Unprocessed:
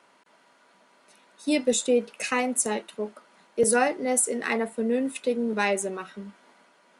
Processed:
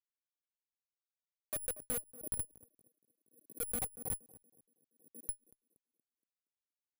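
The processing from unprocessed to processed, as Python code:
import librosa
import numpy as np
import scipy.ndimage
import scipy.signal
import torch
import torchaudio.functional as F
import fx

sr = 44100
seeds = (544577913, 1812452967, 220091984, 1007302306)

p1 = fx.low_shelf(x, sr, hz=470.0, db=-4.0)
p2 = fx.notch(p1, sr, hz=720.0, q=12.0)
p3 = fx.level_steps(p2, sr, step_db=23)
p4 = p2 + F.gain(torch.from_numpy(p3), -0.5).numpy()
p5 = fx.vowel_filter(p4, sr, vowel='a')
p6 = fx.rotary_switch(p5, sr, hz=7.5, then_hz=1.1, switch_at_s=0.44)
p7 = fx.schmitt(p6, sr, flips_db=-30.5)
p8 = p7 + fx.echo_banded(p7, sr, ms=235, feedback_pct=47, hz=310.0, wet_db=-16.0, dry=0)
p9 = (np.kron(scipy.signal.resample_poly(p8, 1, 4), np.eye(4)[0]) * 4)[:len(p8)]
p10 = fx.pre_swell(p9, sr, db_per_s=120.0)
y = F.gain(torch.from_numpy(p10), 2.5).numpy()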